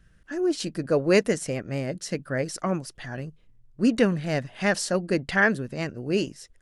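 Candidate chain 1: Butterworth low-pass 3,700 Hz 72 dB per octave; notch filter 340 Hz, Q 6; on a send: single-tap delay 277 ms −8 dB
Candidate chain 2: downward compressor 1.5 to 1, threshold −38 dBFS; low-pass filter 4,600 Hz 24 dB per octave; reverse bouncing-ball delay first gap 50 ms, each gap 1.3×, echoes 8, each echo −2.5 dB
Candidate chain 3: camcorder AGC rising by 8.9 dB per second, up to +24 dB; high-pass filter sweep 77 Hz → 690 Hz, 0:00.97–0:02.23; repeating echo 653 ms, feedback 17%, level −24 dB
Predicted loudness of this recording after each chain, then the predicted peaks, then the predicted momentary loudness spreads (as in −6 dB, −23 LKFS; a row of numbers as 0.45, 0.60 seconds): −26.5, −29.5, −25.0 LKFS; −8.5, −13.0, −6.0 dBFS; 13, 9, 12 LU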